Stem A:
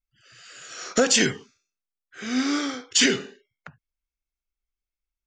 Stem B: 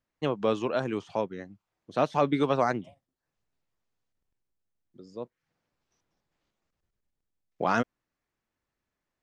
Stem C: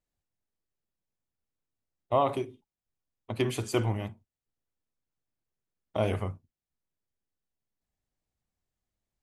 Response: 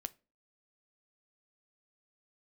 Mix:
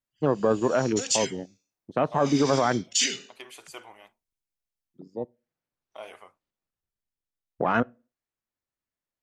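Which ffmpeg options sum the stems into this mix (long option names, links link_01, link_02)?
-filter_complex "[0:a]dynaudnorm=framelen=260:gausssize=11:maxgain=7.5dB,aexciter=amount=5.7:drive=1.4:freq=2100,volume=-19.5dB[link_01];[1:a]afwtdn=0.02,volume=3dB,asplit=2[link_02][link_03];[link_03]volume=-5.5dB[link_04];[2:a]highpass=750,volume=-7.5dB[link_05];[3:a]atrim=start_sample=2205[link_06];[link_04][link_06]afir=irnorm=-1:irlink=0[link_07];[link_01][link_02][link_05][link_07]amix=inputs=4:normalize=0,alimiter=limit=-12.5dB:level=0:latency=1:release=17"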